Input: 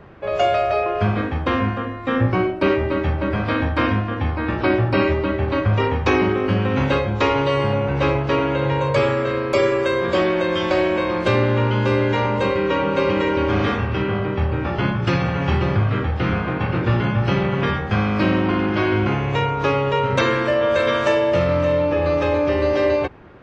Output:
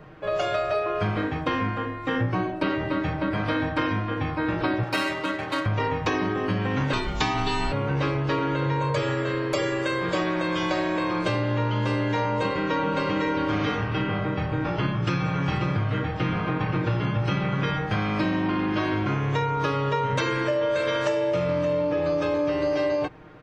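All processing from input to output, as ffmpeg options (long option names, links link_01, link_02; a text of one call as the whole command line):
ffmpeg -i in.wav -filter_complex "[0:a]asettb=1/sr,asplit=3[link_01][link_02][link_03];[link_01]atrim=end=4.834[link_04];[link_02]atrim=start=4.83:end=5.66,asetpts=PTS-STARTPTS,afade=type=in:duration=0.004:curve=qsin,afade=type=out:start_time=0.826:duration=0.004:curve=qsin,aemphasis=mode=production:type=riaa,adynamicsmooth=sensitivity=2.5:basefreq=3400[link_05];[link_03]atrim=start=5.656[link_06];[link_04][link_05]acrossfade=duration=0.004:curve1=hsin:curve2=qsin[link_07];[link_07][link_06]acrossfade=duration=0.004:curve1=qsin:curve2=hsin,asettb=1/sr,asplit=3[link_08][link_09][link_10];[link_08]atrim=end=6.934[link_11];[link_09]atrim=start=6.93:end=7.72,asetpts=PTS-STARTPTS,afade=type=in:duration=0.004:curve=qsin,afade=type=out:start_time=0.786:duration=0.004:curve=qsin,aemphasis=mode=production:type=75kf,afreqshift=-160[link_12];[link_10]atrim=start=7.716[link_13];[link_11][link_12]acrossfade=duration=0.004:curve1=hsin:curve2=qsin[link_14];[link_14][link_13]acrossfade=duration=0.004:curve1=qsin:curve2=hsin,highshelf=frequency=5800:gain=7,aecho=1:1:6.5:0.66,acompressor=threshold=-17dB:ratio=6,volume=-4dB" out.wav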